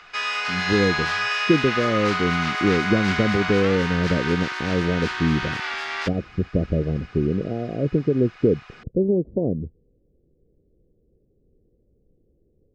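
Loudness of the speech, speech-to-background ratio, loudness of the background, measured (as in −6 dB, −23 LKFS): −23.5 LKFS, 1.5 dB, −25.0 LKFS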